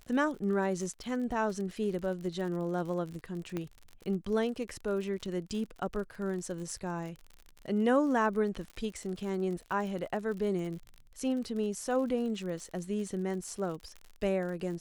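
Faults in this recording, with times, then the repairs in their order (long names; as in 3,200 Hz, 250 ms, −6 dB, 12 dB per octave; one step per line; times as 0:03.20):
surface crackle 57 per second −39 dBFS
0:03.57: click −22 dBFS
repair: click removal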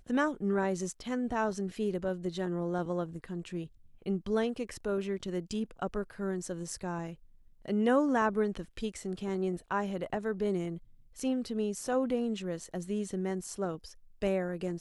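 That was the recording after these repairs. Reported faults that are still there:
0:03.57: click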